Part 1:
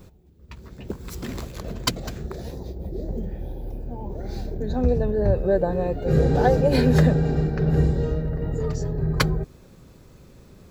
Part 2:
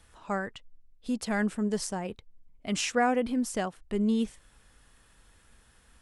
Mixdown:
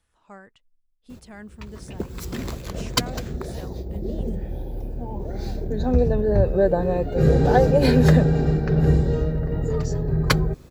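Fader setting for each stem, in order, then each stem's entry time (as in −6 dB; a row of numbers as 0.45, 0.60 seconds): +2.0, −13.0 decibels; 1.10, 0.00 seconds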